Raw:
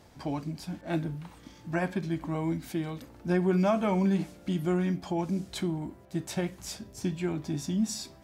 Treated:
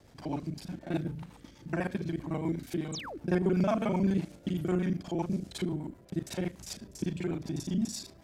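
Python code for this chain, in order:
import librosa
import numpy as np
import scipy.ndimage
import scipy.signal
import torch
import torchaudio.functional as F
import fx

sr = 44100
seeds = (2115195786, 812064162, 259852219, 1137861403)

y = fx.local_reverse(x, sr, ms=36.0)
y = fx.spec_paint(y, sr, seeds[0], shape='fall', start_s=2.92, length_s=0.26, low_hz=250.0, high_hz=8700.0, level_db=-38.0)
y = fx.rotary(y, sr, hz=8.0)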